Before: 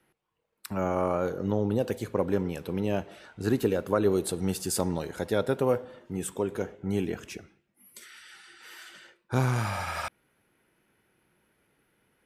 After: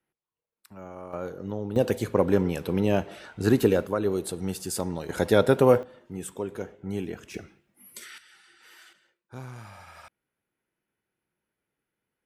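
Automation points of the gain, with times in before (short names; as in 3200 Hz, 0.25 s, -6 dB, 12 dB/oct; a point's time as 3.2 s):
-14 dB
from 1.13 s -5.5 dB
from 1.76 s +5 dB
from 3.86 s -2 dB
from 5.09 s +7 dB
from 5.83 s -3 dB
from 7.34 s +5 dB
from 8.18 s -5.5 dB
from 8.93 s -15 dB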